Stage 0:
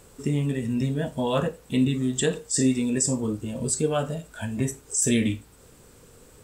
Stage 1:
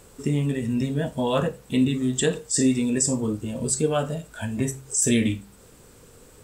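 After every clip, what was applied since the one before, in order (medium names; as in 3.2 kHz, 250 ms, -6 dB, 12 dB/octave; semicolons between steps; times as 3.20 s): de-hum 66.7 Hz, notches 3; trim +1.5 dB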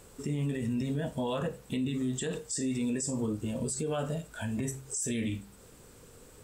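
peak limiter -21 dBFS, peak gain reduction 11 dB; trim -3.5 dB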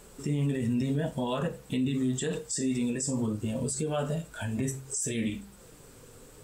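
flange 0.74 Hz, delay 4.7 ms, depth 3.6 ms, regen -44%; trim +6 dB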